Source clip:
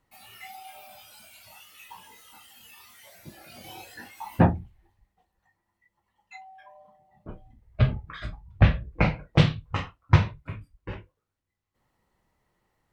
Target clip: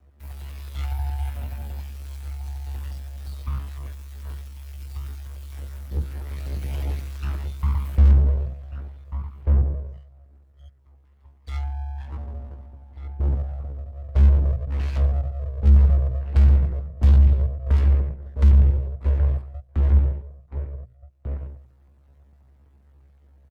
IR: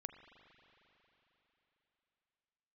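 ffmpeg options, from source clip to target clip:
-filter_complex "[0:a]afreqshift=-360,tiltshelf=frequency=1400:gain=4,aeval=exprs='abs(val(0))':channel_layout=same,bandreject=frequency=50:width_type=h:width=6,bandreject=frequency=100:width_type=h:width=6,asplit=2[link_01][link_02];[link_02]acompressor=threshold=-33dB:ratio=6,volume=3dB[link_03];[link_01][link_03]amix=inputs=2:normalize=0,asplit=2[link_04][link_05];[link_05]adelay=816.3,volume=-10dB,highshelf=frequency=4000:gain=-18.4[link_06];[link_04][link_06]amix=inputs=2:normalize=0,aeval=exprs='val(0)*sin(2*PI*69*n/s)':channel_layout=same,asoftclip=type=tanh:threshold=-21dB,equalizer=frequency=96:width=0.5:gain=14,atempo=0.55,acrossover=split=170[link_07][link_08];[link_08]acompressor=threshold=-34dB:ratio=3[link_09];[link_07][link_09]amix=inputs=2:normalize=0"

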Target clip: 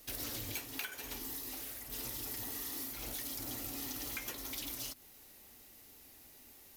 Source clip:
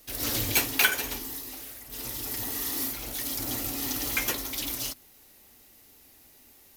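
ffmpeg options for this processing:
ffmpeg -i in.wav -af "acompressor=threshold=-36dB:ratio=12,volume=-2dB" out.wav

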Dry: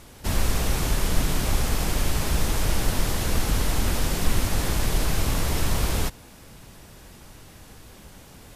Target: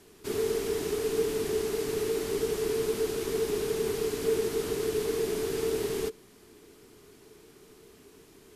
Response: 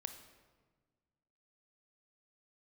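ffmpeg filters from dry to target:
-af "afreqshift=-460,volume=-8.5dB"

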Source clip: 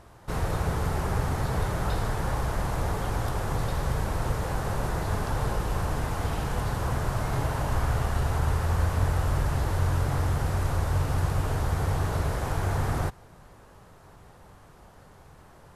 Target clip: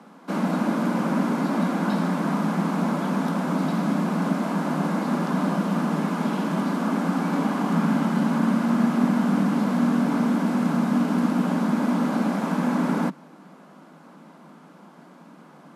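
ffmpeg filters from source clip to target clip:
ffmpeg -i in.wav -af "lowpass=frequency=3900:poles=1,bandreject=frequency=1700:width=8.7,afreqshift=150,volume=3.5dB" out.wav

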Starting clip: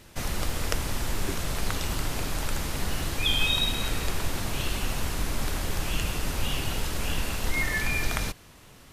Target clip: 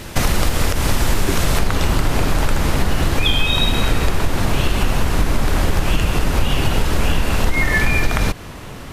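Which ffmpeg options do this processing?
ffmpeg -i in.wav -af "asetnsamples=nb_out_samples=441:pad=0,asendcmd='1.59 highshelf g -9.5',highshelf=frequency=2900:gain=-3,acompressor=threshold=-31dB:ratio=6,alimiter=level_in=20.5dB:limit=-1dB:release=50:level=0:latency=1,volume=-1dB" out.wav

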